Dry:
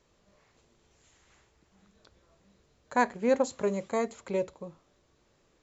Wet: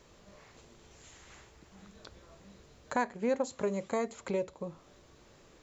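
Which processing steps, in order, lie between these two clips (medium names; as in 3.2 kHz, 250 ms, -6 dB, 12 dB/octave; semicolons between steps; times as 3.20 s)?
compression 2:1, threshold -48 dBFS, peak gain reduction 16 dB; trim +9 dB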